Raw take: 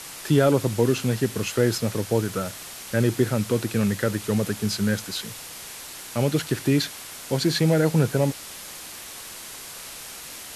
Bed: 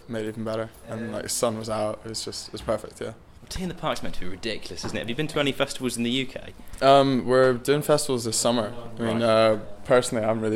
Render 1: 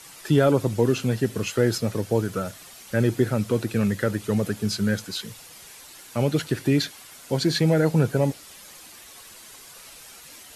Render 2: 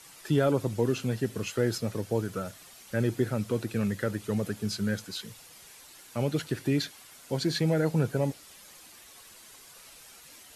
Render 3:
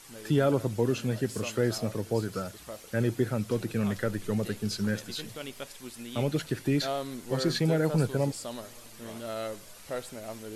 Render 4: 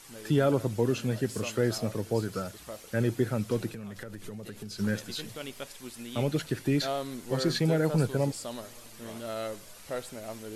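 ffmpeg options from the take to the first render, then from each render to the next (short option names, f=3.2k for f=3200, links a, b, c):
-af "afftdn=nr=9:nf=-39"
-af "volume=-6dB"
-filter_complex "[1:a]volume=-16.5dB[a];[0:a][a]amix=inputs=2:normalize=0"
-filter_complex "[0:a]asplit=3[a][b][c];[a]afade=t=out:st=3.69:d=0.02[d];[b]acompressor=threshold=-36dB:ratio=16:attack=3.2:release=140:knee=1:detection=peak,afade=t=in:st=3.69:d=0.02,afade=t=out:st=4.78:d=0.02[e];[c]afade=t=in:st=4.78:d=0.02[f];[d][e][f]amix=inputs=3:normalize=0"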